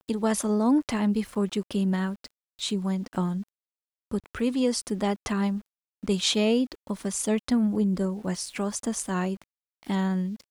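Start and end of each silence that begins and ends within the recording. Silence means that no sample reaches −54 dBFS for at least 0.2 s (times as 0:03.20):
0:02.31–0:02.59
0:03.48–0:04.11
0:05.66–0:06.03
0:09.44–0:09.83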